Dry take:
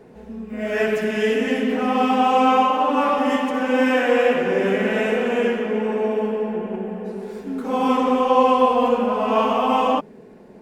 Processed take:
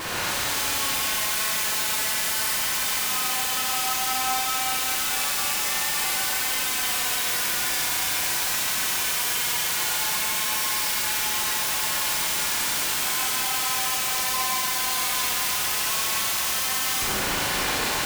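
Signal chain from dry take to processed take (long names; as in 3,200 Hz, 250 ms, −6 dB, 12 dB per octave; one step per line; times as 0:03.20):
spectral envelope flattened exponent 0.1
high-pass filter 820 Hz 24 dB per octave
in parallel at +3 dB: downward compressor 5 to 1, threshold −35 dBFS, peak gain reduction 19 dB
on the sum: brickwall limiter −12.5 dBFS, peak gain reduction 9 dB
phase-vocoder stretch with locked phases 1.7×
comparator with hysteresis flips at −39 dBFS
four-comb reverb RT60 3.2 s, combs from 31 ms, DRR −6.5 dB
level −8.5 dB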